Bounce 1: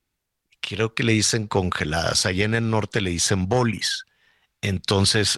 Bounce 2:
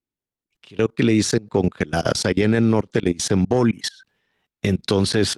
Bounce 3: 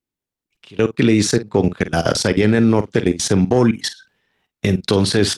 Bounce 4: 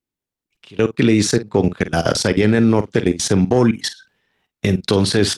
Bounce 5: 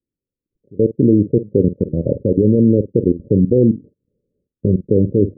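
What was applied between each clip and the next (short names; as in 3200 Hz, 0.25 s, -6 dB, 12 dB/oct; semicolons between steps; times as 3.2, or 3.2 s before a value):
level quantiser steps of 24 dB; bell 290 Hz +11 dB 2.2 oct
doubler 48 ms -13.5 dB; gain +3 dB
nothing audible
Chebyshev low-pass 570 Hz, order 8; gain +2.5 dB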